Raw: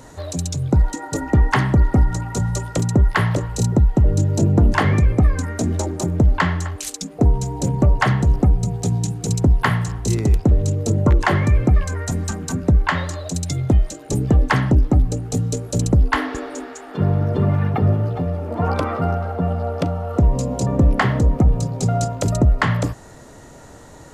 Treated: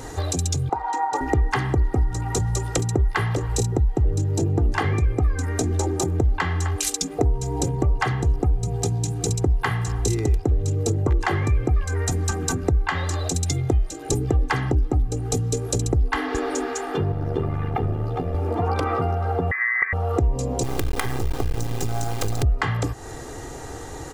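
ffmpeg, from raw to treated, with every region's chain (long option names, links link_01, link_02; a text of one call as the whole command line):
ffmpeg -i in.wav -filter_complex "[0:a]asettb=1/sr,asplit=3[link_01][link_02][link_03];[link_01]atrim=end=0.694[link_04];[link_02]atrim=start=0.69:end=1.21,asetpts=PTS-STARTPTS,afade=type=in:duration=0.004:curve=qsin,afade=type=out:start_time=0.516:duration=0.004:curve=qsin,highpass=frequency=890:width_type=q:width=4.2,aemphasis=mode=reproduction:type=riaa[link_05];[link_03]atrim=start=1.206[link_06];[link_04][link_05]acrossfade=duration=0.004:curve1=hsin:curve2=qsin[link_07];[link_07][link_06]acrossfade=duration=0.004:curve1=qsin:curve2=hsin,asettb=1/sr,asplit=3[link_08][link_09][link_10];[link_08]atrim=end=17.124[link_11];[link_09]atrim=start=17.12:end=18.35,asetpts=PTS-STARTPTS,afade=type=in:duration=0.004:curve=qsin,afade=type=out:start_time=1.226:duration=0.004:curve=qsin,highpass=92,tremolo=f=76:d=0.71[link_12];[link_10]atrim=start=18.346[link_13];[link_11][link_12]acrossfade=duration=0.004:curve1=hsin:curve2=qsin[link_14];[link_14][link_13]acrossfade=duration=0.004:curve1=qsin:curve2=hsin,asettb=1/sr,asplit=3[link_15][link_16][link_17];[link_15]atrim=end=19.514[link_18];[link_16]atrim=start=19.51:end=19.93,asetpts=PTS-STARTPTS,afade=type=in:duration=0.004:curve=qsin,afade=type=out:start_time=0.416:duration=0.004:curve=qsin,highpass=frequency=520:width_type=q:width=1.7,lowpass=frequency=2100:width_type=q:width=0.5098,lowpass=frequency=2100:width_type=q:width=0.6013,lowpass=frequency=2100:width_type=q:width=0.9,lowpass=frequency=2100:width_type=q:width=2.563,afreqshift=-2500[link_19];[link_17]atrim=start=19.926[link_20];[link_18][link_19]acrossfade=duration=0.004:curve1=hsin:curve2=qsin[link_21];[link_21][link_20]acrossfade=duration=0.004:curve1=qsin:curve2=hsin,asettb=1/sr,asplit=3[link_22][link_23][link_24];[link_22]atrim=end=20.634[link_25];[link_23]atrim=start=20.63:end=22.43,asetpts=PTS-STARTPTS,afade=type=in:duration=0.004:curve=qsin,afade=type=out:start_time=1.796:duration=0.004:curve=qsin,equalizer=frequency=110:width=5.7:gain=5.5,acompressor=threshold=-16dB:ratio=10:attack=3.2:release=140:knee=1:detection=peak,acrusher=bits=3:dc=4:mix=0:aa=0.000001[link_26];[link_24]atrim=start=22.426[link_27];[link_25][link_26]acrossfade=duration=0.004:curve1=hsin:curve2=qsin[link_28];[link_28][link_27]acrossfade=duration=0.004:curve1=qsin:curve2=hsin,acompressor=threshold=-28dB:ratio=4,aecho=1:1:2.5:0.6,volume=6dB" out.wav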